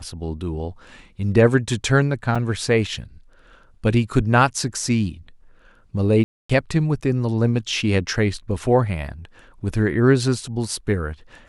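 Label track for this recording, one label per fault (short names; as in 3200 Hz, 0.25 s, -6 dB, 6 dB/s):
2.350000	2.360000	gap 5.3 ms
6.240000	6.500000	gap 0.255 s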